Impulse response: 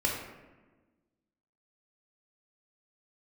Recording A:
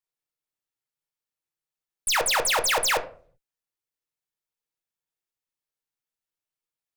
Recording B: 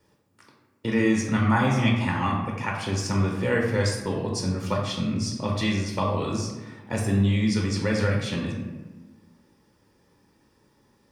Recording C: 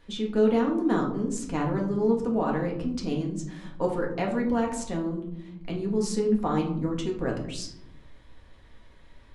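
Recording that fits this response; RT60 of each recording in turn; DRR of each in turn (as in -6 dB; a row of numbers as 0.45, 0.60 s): B; 0.50, 1.3, 0.75 s; 5.0, -1.0, -1.0 dB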